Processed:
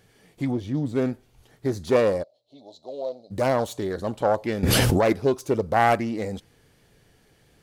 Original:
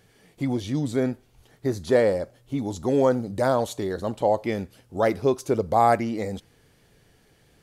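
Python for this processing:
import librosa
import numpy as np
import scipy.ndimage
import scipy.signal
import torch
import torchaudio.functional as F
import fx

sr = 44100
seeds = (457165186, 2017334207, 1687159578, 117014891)

y = fx.self_delay(x, sr, depth_ms=0.18)
y = fx.high_shelf(y, sr, hz=2400.0, db=-12.0, at=(0.5, 0.95), fade=0.02)
y = fx.double_bandpass(y, sr, hz=1600.0, octaves=2.7, at=(2.22, 3.3), fade=0.02)
y = fx.env_flatten(y, sr, amount_pct=100, at=(4.63, 5.13))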